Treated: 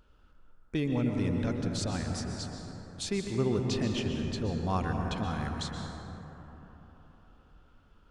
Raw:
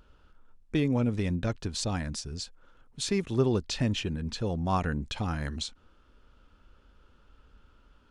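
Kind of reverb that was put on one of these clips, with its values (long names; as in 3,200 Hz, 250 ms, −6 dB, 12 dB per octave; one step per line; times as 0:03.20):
dense smooth reverb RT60 4 s, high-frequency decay 0.3×, pre-delay 110 ms, DRR 2 dB
level −4 dB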